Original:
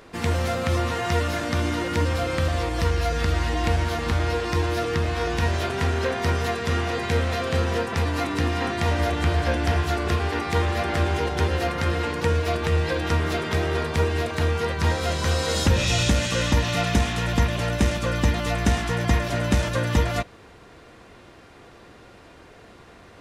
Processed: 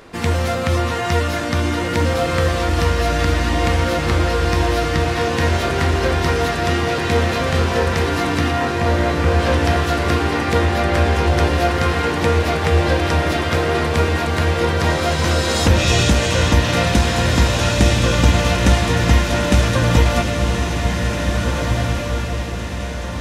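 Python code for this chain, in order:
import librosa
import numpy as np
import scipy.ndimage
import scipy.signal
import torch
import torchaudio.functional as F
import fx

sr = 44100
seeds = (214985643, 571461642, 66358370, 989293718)

y = fx.lowpass(x, sr, hz=1800.0, slope=12, at=(8.51, 9.4))
y = fx.echo_diffused(y, sr, ms=1891, feedback_pct=47, wet_db=-3.0)
y = F.gain(torch.from_numpy(y), 5.0).numpy()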